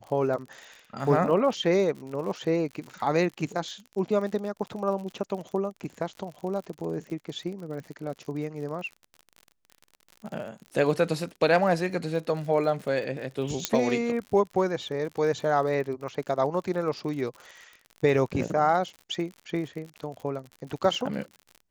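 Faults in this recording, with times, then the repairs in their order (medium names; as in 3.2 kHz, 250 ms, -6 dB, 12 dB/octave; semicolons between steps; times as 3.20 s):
crackle 56 per s -36 dBFS
13.65 s: pop -6 dBFS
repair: de-click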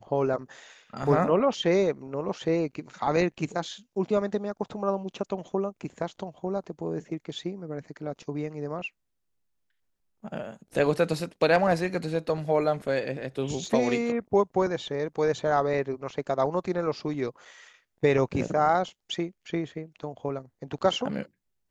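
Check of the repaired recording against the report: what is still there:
13.65 s: pop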